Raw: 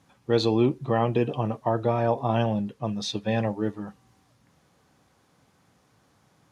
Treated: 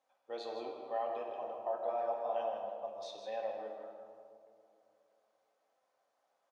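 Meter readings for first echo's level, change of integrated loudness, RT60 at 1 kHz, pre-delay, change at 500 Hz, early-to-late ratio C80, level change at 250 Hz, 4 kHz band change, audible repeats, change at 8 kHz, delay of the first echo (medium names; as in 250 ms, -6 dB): -8.5 dB, -13.5 dB, 2.3 s, 4 ms, -11.5 dB, 3.5 dB, -29.0 dB, -18.0 dB, 1, under -15 dB, 160 ms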